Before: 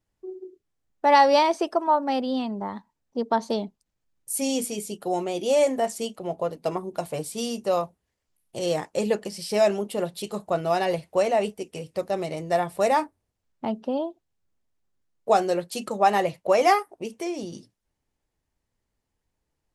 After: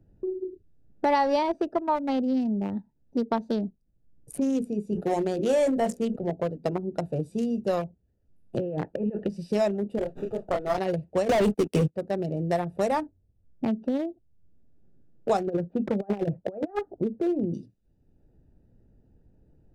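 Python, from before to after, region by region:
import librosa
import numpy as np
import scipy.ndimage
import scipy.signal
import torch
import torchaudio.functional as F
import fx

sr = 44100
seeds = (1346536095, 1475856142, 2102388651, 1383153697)

y = fx.chain(x, sr, fx.hum_notches(base_hz=60, count=9),
    fx.leveller(passes=1),
    fx.sustainer(db_per_s=110.0), at=(4.92, 6.3))
y = fx.chain(y, sr, fx.lowpass(hz=2600.0, slope=24),
    fx.peak_eq(hz=230.0, db=-2.5, octaves=0.73),
    fx.over_compress(threshold_db=-31.0, ratio=-1.0), at=(8.57, 9.29))
y = fx.chain(y, sr, fx.highpass(hz=380.0, slope=12),
    fx.doubler(ms=27.0, db=-4.0),
    fx.running_max(window=9), at=(9.98, 10.78))
y = fx.chain(y, sr, fx.leveller(passes=5),
    fx.band_squash(depth_pct=40), at=(11.29, 11.96))
y = fx.chain(y, sr, fx.lowpass(hz=1500.0, slope=24),
    fx.over_compress(threshold_db=-26.0, ratio=-0.5), at=(15.47, 17.54))
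y = fx.wiener(y, sr, points=41)
y = fx.low_shelf(y, sr, hz=320.0, db=10.0)
y = fx.band_squash(y, sr, depth_pct=70)
y = y * 10.0 ** (-4.0 / 20.0)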